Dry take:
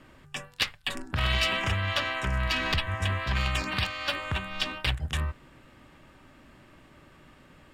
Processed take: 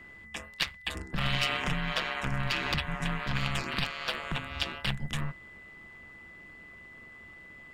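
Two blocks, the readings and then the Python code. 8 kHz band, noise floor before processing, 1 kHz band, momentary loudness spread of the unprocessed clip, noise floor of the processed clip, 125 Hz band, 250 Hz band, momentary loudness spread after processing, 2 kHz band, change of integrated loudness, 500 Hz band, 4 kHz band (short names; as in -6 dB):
-3.0 dB, -56 dBFS, -2.5 dB, 9 LU, -50 dBFS, -4.0 dB, +1.0 dB, 19 LU, -2.5 dB, -3.0 dB, -3.5 dB, -3.0 dB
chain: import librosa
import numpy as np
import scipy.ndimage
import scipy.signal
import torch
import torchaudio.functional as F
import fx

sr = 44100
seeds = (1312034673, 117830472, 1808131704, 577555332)

y = x * np.sin(2.0 * np.pi * 71.0 * np.arange(len(x)) / sr)
y = y + 10.0 ** (-48.0 / 20.0) * np.sin(2.0 * np.pi * 2000.0 * np.arange(len(y)) / sr)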